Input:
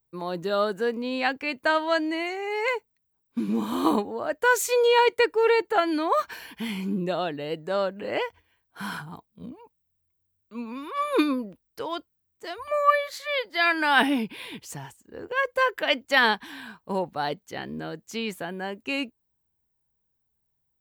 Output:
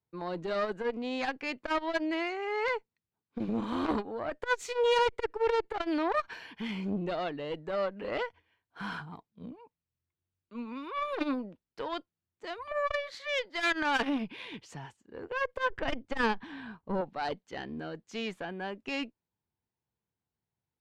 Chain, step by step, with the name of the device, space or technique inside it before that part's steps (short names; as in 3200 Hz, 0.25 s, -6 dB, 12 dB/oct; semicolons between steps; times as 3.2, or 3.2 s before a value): valve radio (BPF 87–4300 Hz; tube stage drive 19 dB, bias 0.7; core saturation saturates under 430 Hz); 15.7–17.01 tilt -2.5 dB/oct